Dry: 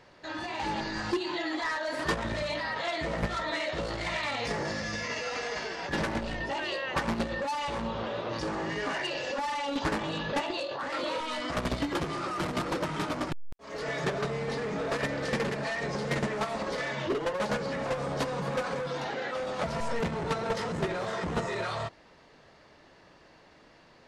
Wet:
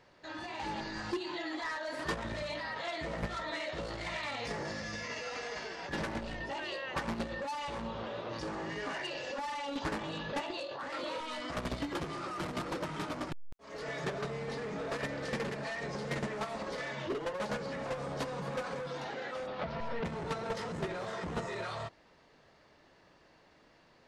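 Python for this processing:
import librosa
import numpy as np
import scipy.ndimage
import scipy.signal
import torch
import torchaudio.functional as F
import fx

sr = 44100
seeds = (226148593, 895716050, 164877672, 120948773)

y = fx.lowpass(x, sr, hz=4300.0, slope=24, at=(19.46, 20.04), fade=0.02)
y = y * librosa.db_to_amplitude(-6.0)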